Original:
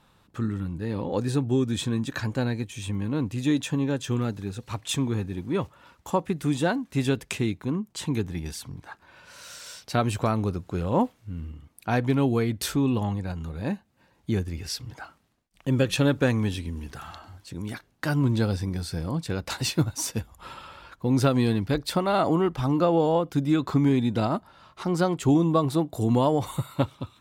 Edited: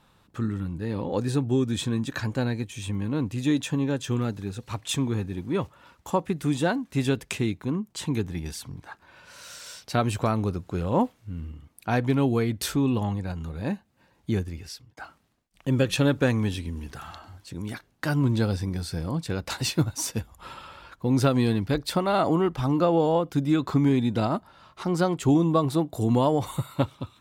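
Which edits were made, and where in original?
14.36–14.97 s: fade out

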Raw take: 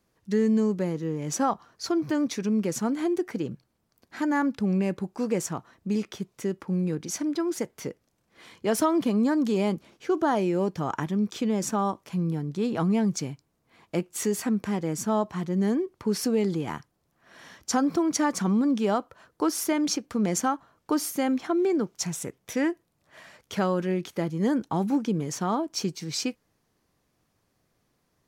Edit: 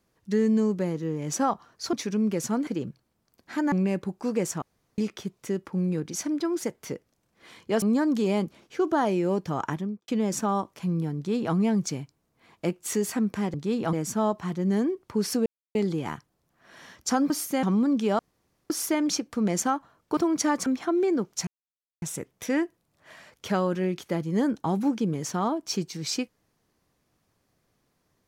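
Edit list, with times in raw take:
1.93–2.25 s: delete
2.99–3.31 s: delete
4.36–4.67 s: delete
5.57–5.93 s: room tone
8.77–9.12 s: delete
10.99–11.38 s: studio fade out
12.46–12.85 s: copy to 14.84 s
16.37 s: insert silence 0.29 s
17.92–18.41 s: swap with 20.95–21.28 s
18.97–19.48 s: room tone
22.09 s: insert silence 0.55 s

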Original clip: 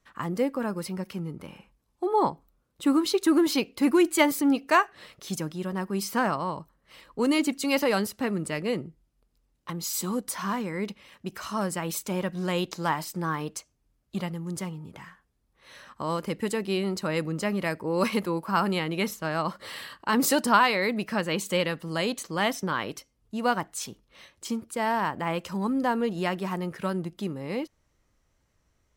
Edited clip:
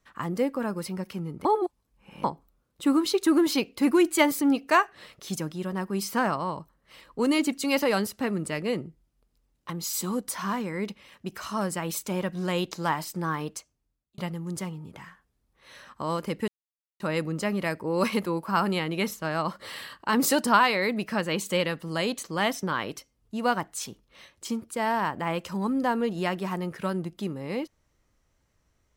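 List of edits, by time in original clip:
1.45–2.24 s: reverse
13.47–14.18 s: fade out
16.48–17.00 s: mute

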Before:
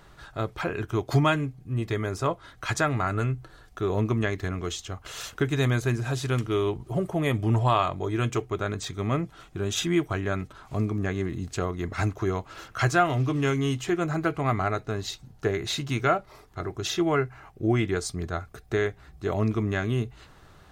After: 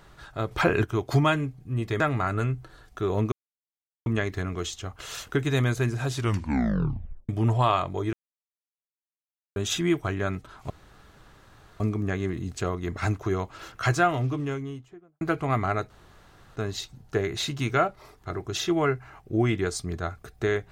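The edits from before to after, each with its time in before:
0.51–0.84 s: gain +7.5 dB
2.00–2.80 s: delete
4.12 s: insert silence 0.74 s
6.21 s: tape stop 1.14 s
8.19–9.62 s: mute
10.76 s: insert room tone 1.10 s
12.85–14.17 s: studio fade out
14.86 s: insert room tone 0.66 s

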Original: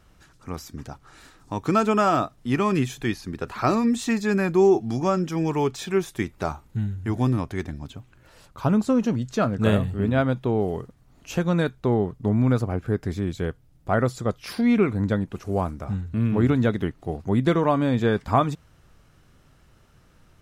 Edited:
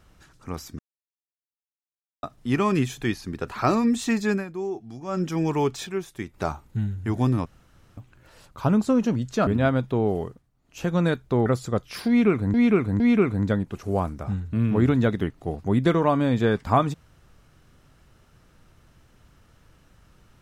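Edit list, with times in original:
0.79–2.23 s: mute
4.30–5.22 s: dip -13 dB, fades 0.15 s
5.87–6.34 s: gain -6.5 dB
7.46–7.97 s: room tone
9.47–10.00 s: delete
10.72–11.48 s: dip -14 dB, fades 0.31 s
11.99–13.99 s: delete
14.61–15.07 s: loop, 3 plays

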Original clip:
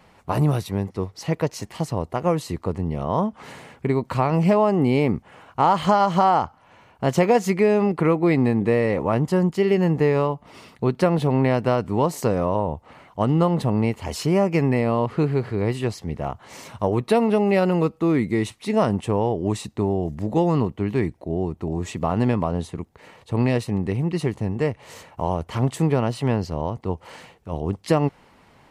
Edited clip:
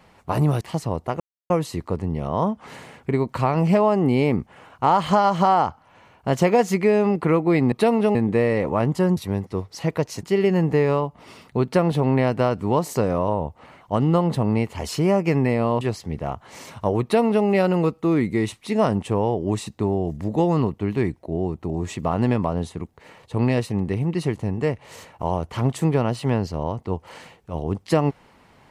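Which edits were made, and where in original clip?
0.61–1.67 s: move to 9.50 s
2.26 s: insert silence 0.30 s
15.08–15.79 s: delete
17.01–17.44 s: copy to 8.48 s

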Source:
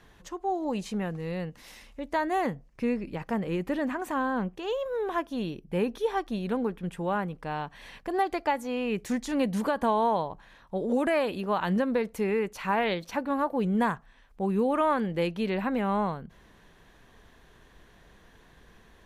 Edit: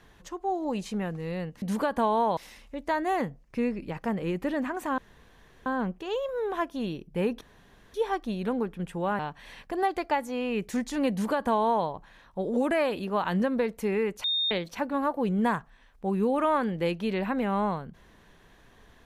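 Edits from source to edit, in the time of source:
4.23 s: insert room tone 0.68 s
5.98 s: insert room tone 0.53 s
7.23–7.55 s: delete
9.47–10.22 s: copy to 1.62 s
12.60–12.87 s: bleep 3.67 kHz -24 dBFS

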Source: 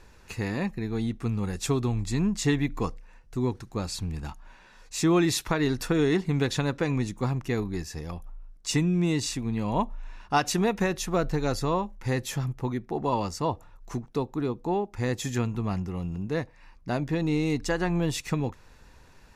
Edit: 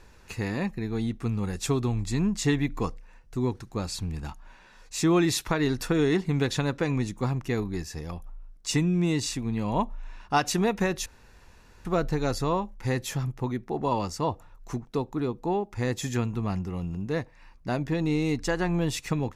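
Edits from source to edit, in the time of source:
11.06 s: insert room tone 0.79 s

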